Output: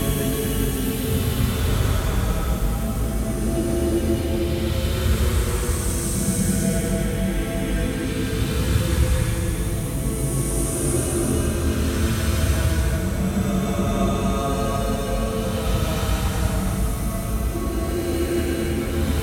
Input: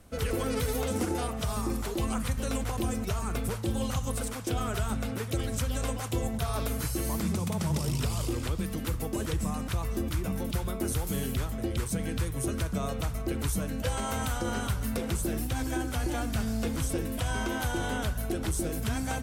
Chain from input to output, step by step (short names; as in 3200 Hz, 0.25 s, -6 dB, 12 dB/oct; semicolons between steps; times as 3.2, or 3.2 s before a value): echo with dull and thin repeats by turns 0.345 s, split 920 Hz, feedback 84%, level -11 dB; Paulstretch 8.7×, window 0.25 s, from 11.19; gain +8.5 dB